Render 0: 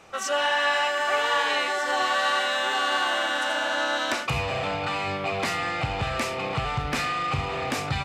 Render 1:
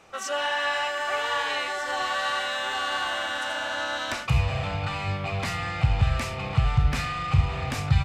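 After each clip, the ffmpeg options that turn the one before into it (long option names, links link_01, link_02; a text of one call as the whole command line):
ffmpeg -i in.wav -af "asubboost=boost=9:cutoff=110,volume=-3dB" out.wav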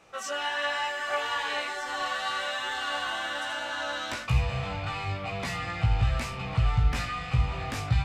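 ffmpeg -i in.wav -af "flanger=delay=16:depth=2.1:speed=1.1" out.wav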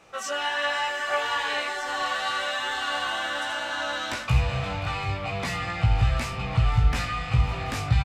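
ffmpeg -i in.wav -af "aecho=1:1:527|734:0.133|0.141,volume=3dB" out.wav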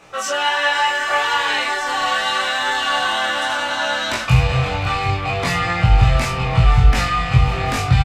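ffmpeg -i in.wav -filter_complex "[0:a]asplit=2[link_01][link_02];[link_02]adelay=23,volume=-2.5dB[link_03];[link_01][link_03]amix=inputs=2:normalize=0,volume=7dB" out.wav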